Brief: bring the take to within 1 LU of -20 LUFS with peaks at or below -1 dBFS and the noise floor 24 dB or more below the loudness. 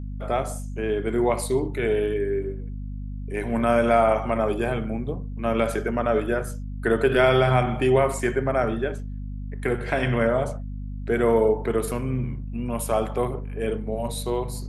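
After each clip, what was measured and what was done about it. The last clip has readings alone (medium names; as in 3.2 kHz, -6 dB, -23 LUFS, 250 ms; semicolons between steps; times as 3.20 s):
hum 50 Hz; highest harmonic 250 Hz; hum level -30 dBFS; loudness -24.0 LUFS; peak level -7.0 dBFS; loudness target -20.0 LUFS
-> hum notches 50/100/150/200/250 Hz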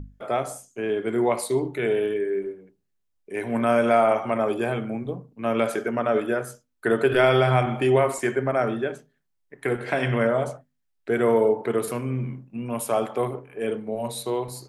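hum not found; loudness -24.5 LUFS; peak level -7.5 dBFS; loudness target -20.0 LUFS
-> trim +4.5 dB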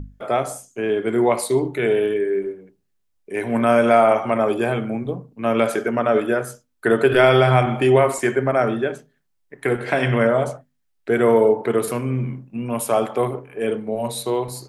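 loudness -20.0 LUFS; peak level -3.0 dBFS; noise floor -69 dBFS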